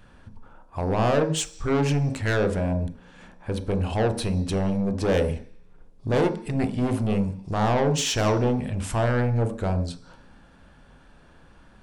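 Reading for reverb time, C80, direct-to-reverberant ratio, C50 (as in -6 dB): 0.50 s, 16.0 dB, 7.5 dB, 12.0 dB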